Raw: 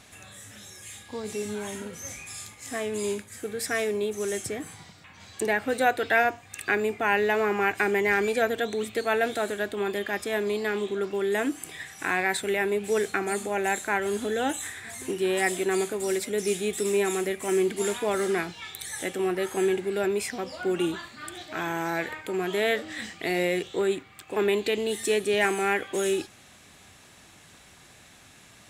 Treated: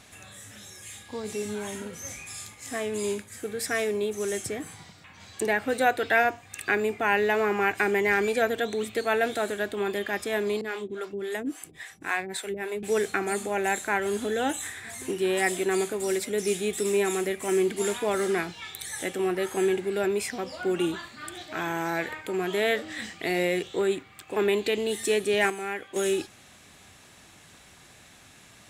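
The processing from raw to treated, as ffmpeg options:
ffmpeg -i in.wav -filter_complex "[0:a]asettb=1/sr,asplit=3[link_01][link_02][link_03];[link_01]atrim=end=10.614[link_04];[link_02]atrim=start=10.61:end=12.83,asetpts=PTS-STARTPTS,afade=type=in:duration=0.004:curve=qsin,afade=type=out:start_time=2.216:duration=0.004:curve=qsin,acrossover=split=420[link_05][link_06];[link_05]aeval=exprs='val(0)*(1-1/2+1/2*cos(2*PI*3.6*n/s))':channel_layout=same[link_07];[link_06]aeval=exprs='val(0)*(1-1/2-1/2*cos(2*PI*3.6*n/s))':channel_layout=same[link_08];[link_07][link_08]amix=inputs=2:normalize=0[link_09];[link_03]atrim=start=12.826[link_10];[link_04][link_09]acrossfade=duration=0.004:curve1=hsin:curve2=qsin[link_11];[link_11][link_10]acrossfade=duration=0.004:curve1=qsin:curve2=hsin,asplit=3[link_12][link_13][link_14];[link_12]atrim=end=25.502[link_15];[link_13]atrim=start=25.498:end=25.962,asetpts=PTS-STARTPTS,volume=-7.5dB[link_16];[link_14]atrim=start=25.958[link_17];[link_15][link_16]acrossfade=duration=0.004:curve1=hsin:curve2=hsin[link_18];[link_18][link_17]acrossfade=duration=0.004:curve1=hsin:curve2=hsin" out.wav

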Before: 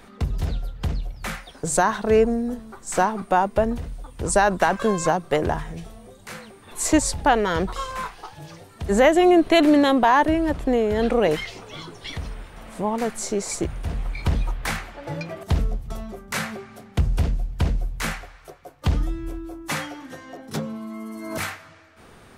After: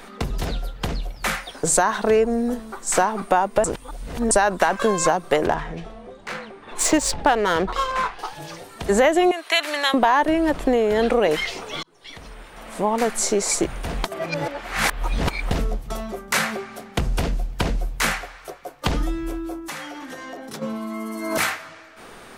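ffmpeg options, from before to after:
ffmpeg -i in.wav -filter_complex "[0:a]asettb=1/sr,asplit=3[link_01][link_02][link_03];[link_01]atrim=end=5.474[link_04];[link_02]atrim=start=5.47:end=8.19,asetpts=PTS-STARTPTS,afade=type=in:duration=0.004:curve=qsin,afade=type=out:start_time=2.716:duration=0.004:curve=qsin,adynamicsmooth=sensitivity=6:basefreq=3000[link_05];[link_03]atrim=start=8.186[link_06];[link_04][link_05]acrossfade=duration=0.004:curve1=hsin:curve2=qsin[link_07];[link_07][link_06]acrossfade=duration=0.004:curve1=qsin:curve2=hsin,asettb=1/sr,asplit=3[link_08][link_09][link_10];[link_08]atrim=end=9.314[link_11];[link_09]atrim=start=9.31:end=9.94,asetpts=PTS-STARTPTS,afade=type=in:duration=0.004:curve=qsin,afade=type=out:start_time=0.626:duration=0.004:curve=qsin,highpass=1300[link_12];[link_10]atrim=start=9.936[link_13];[link_11][link_12]acrossfade=duration=0.004:curve1=hsin:curve2=qsin[link_14];[link_14][link_13]acrossfade=duration=0.004:curve1=qsin:curve2=hsin,asplit=3[link_15][link_16][link_17];[link_15]afade=type=out:start_time=19.59:duration=0.02[link_18];[link_16]acompressor=threshold=-37dB:ratio=6:attack=3.2:release=140:knee=1:detection=peak,afade=type=in:start_time=19.59:duration=0.02,afade=type=out:start_time=20.61:duration=0.02[link_19];[link_17]afade=type=in:start_time=20.61:duration=0.02[link_20];[link_18][link_19][link_20]amix=inputs=3:normalize=0,asplit=6[link_21][link_22][link_23][link_24][link_25][link_26];[link_21]atrim=end=3.642[link_27];[link_22]atrim=start=3.638:end=4.312,asetpts=PTS-STARTPTS,areverse[link_28];[link_23]atrim=start=4.308:end=11.83,asetpts=PTS-STARTPTS,afade=type=out:start_time=7.518:duration=0.004:curve=hsin[link_29];[link_24]atrim=start=11.83:end=14.042,asetpts=PTS-STARTPTS,afade=type=in:duration=1.18[link_30];[link_25]atrim=start=14.038:end=15.512,asetpts=PTS-STARTPTS,areverse[link_31];[link_26]atrim=start=15.508[link_32];[link_27][link_28]acrossfade=duration=0.004:curve1=hsin:curve2=hsin[link_33];[link_29][link_30]concat=n=2:v=0:a=1[link_34];[link_33][link_34]acrossfade=duration=0.004:curve1=hsin:curve2=hsin[link_35];[link_35][link_31]acrossfade=duration=0.004:curve1=hsin:curve2=hsin[link_36];[link_36][link_32]acrossfade=duration=0.004:curve1=hsin:curve2=hsin,equalizer=frequency=81:width_type=o:width=2.1:gain=-14.5,acompressor=threshold=-24dB:ratio=3,volume=8dB" out.wav

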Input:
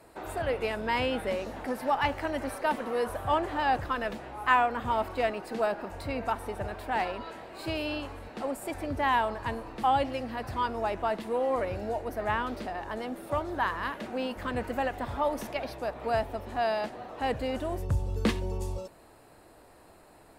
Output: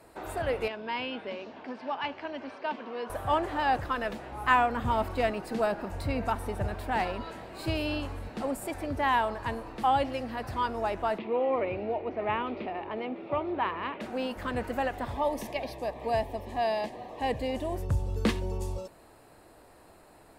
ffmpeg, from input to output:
ffmpeg -i in.wav -filter_complex "[0:a]asettb=1/sr,asplit=3[link_01][link_02][link_03];[link_01]atrim=end=0.684[link_04];[link_02]atrim=start=0.68:end=3.1,asetpts=PTS-STARTPTS,afade=type=in:duration=0.004:curve=qsin,afade=type=out:start_time=2.416:duration=0.004:curve=qsin,highpass=270,equalizer=frequency=320:width_type=q:width=4:gain=-4,equalizer=frequency=520:width_type=q:width=4:gain=-9,equalizer=frequency=800:width_type=q:width=4:gain=-7,equalizer=frequency=1300:width_type=q:width=4:gain=-7,equalizer=frequency=1900:width_type=q:width=4:gain=-8,equalizer=frequency=3900:width_type=q:width=4:gain=-5,lowpass=frequency=4400:width=0.5412,lowpass=frequency=4400:width=1.3066[link_05];[link_03]atrim=start=3.096[link_06];[link_04][link_05]acrossfade=duration=0.004:curve1=hsin:curve2=qsin[link_07];[link_07][link_06]acrossfade=duration=0.004:curve1=qsin:curve2=hsin,asettb=1/sr,asplit=3[link_08][link_09][link_10];[link_08]atrim=end=4.324[link_11];[link_09]atrim=start=4.32:end=8.67,asetpts=PTS-STARTPTS,afade=type=in:duration=0.004:curve=qsin,afade=type=out:start_time=4.346:duration=0.004:curve=qsin,bass=frequency=250:gain=7,treble=frequency=4000:gain=2[link_12];[link_10]atrim=start=8.666[link_13];[link_11][link_12]acrossfade=duration=0.004:curve1=hsin:curve2=qsin[link_14];[link_14][link_13]acrossfade=duration=0.004:curve1=qsin:curve2=hsin,asettb=1/sr,asplit=3[link_15][link_16][link_17];[link_15]atrim=end=11.184[link_18];[link_16]atrim=start=11.18:end=14.01,asetpts=PTS-STARTPTS,afade=type=in:duration=0.004:curve=qsin,afade=type=out:start_time=2.826:duration=0.004:curve=qsin,highpass=110,equalizer=frequency=380:width_type=q:width=4:gain=6,equalizer=frequency=1600:width_type=q:width=4:gain=-9,equalizer=frequency=2400:width_type=q:width=4:gain=8,lowpass=frequency=3300:width=0.5412,lowpass=frequency=3300:width=1.3066[link_19];[link_17]atrim=start=14.006[link_20];[link_18][link_19]acrossfade=duration=0.004:curve1=hsin:curve2=qsin[link_21];[link_21][link_20]acrossfade=duration=0.004:curve1=qsin:curve2=hsin,asettb=1/sr,asplit=3[link_22][link_23][link_24];[link_22]atrim=end=15.124[link_25];[link_23]atrim=start=15.12:end=17.75,asetpts=PTS-STARTPTS,afade=type=in:duration=0.004:curve=qsin,afade=type=out:start_time=2.626:duration=0.004:curve=qsin,asuperstop=centerf=1400:order=4:qfactor=2.8[link_26];[link_24]atrim=start=17.746[link_27];[link_25][link_26]acrossfade=duration=0.004:curve1=hsin:curve2=qsin[link_28];[link_28][link_27]acrossfade=duration=0.004:curve1=qsin:curve2=hsin" out.wav

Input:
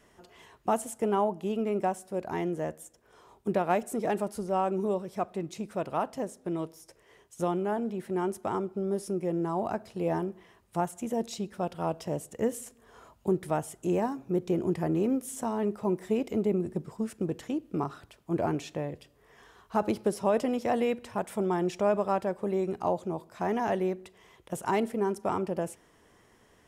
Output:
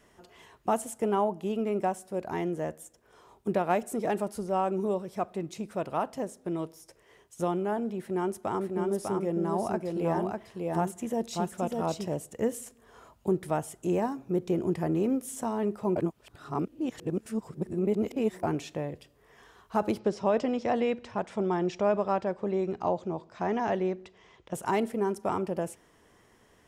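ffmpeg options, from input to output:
ffmpeg -i in.wav -filter_complex "[0:a]asettb=1/sr,asplit=3[link_01][link_02][link_03];[link_01]atrim=end=8.014[link_04];[link_02]atrim=start=8.01:end=12.14,asetpts=PTS-STARTPTS,afade=type=in:duration=0.004:curve=qsin,afade=type=out:start_time=4.126:duration=0.004:curve=qsin,aecho=1:1:599:0.668,atrim=end_sample=182133[link_05];[link_03]atrim=start=12.136[link_06];[link_04][link_05]acrossfade=duration=0.004:curve1=hsin:curve2=qsin[link_07];[link_07][link_06]acrossfade=duration=0.004:curve1=qsin:curve2=hsin,asettb=1/sr,asplit=3[link_08][link_09][link_10];[link_08]atrim=end=19.994[link_11];[link_09]atrim=start=19.99:end=24.54,asetpts=PTS-STARTPTS,afade=type=in:duration=0.004:curve=qsin,afade=type=out:start_time=4.546:duration=0.004:curve=qsin,lowpass=frequency=6400:width=0.5412,lowpass=frequency=6400:width=1.3066[link_12];[link_10]atrim=start=24.536[link_13];[link_11][link_12]acrossfade=duration=0.004:curve1=hsin:curve2=qsin[link_14];[link_14][link_13]acrossfade=duration=0.004:curve1=qsin:curve2=hsin,asplit=3[link_15][link_16][link_17];[link_15]atrim=end=15.962[link_18];[link_16]atrim=start=15.958:end=18.432,asetpts=PTS-STARTPTS,areverse[link_19];[link_17]atrim=start=18.428[link_20];[link_18][link_19]acrossfade=duration=0.004:curve1=hsin:curve2=hsin[link_21];[link_21][link_20]acrossfade=duration=0.004:curve1=hsin:curve2=hsin" out.wav

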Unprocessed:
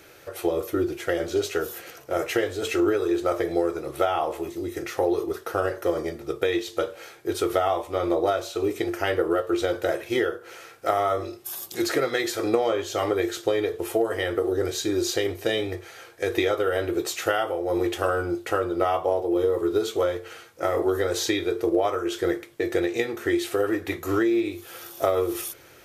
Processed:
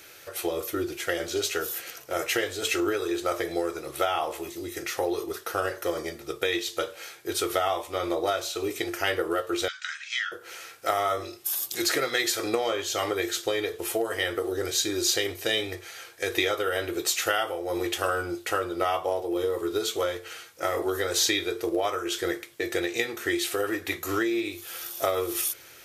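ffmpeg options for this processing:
ffmpeg -i in.wav -filter_complex "[0:a]asettb=1/sr,asplit=3[link_01][link_02][link_03];[link_01]atrim=end=9.684[link_04];[link_02]atrim=start=9.68:end=10.32,asetpts=PTS-STARTPTS,afade=type=in:duration=0.004:curve=qsin,afade=type=out:start_time=0.636:duration=0.004:curve=qsin,asuperpass=centerf=3200:order=12:qfactor=0.53[link_05];[link_03]atrim=start=10.316[link_06];[link_04][link_05]acrossfade=duration=0.004:curve1=hsin:curve2=qsin[link_07];[link_07][link_06]acrossfade=duration=0.004:curve1=qsin:curve2=hsin,tiltshelf=frequency=1400:gain=-6" out.wav

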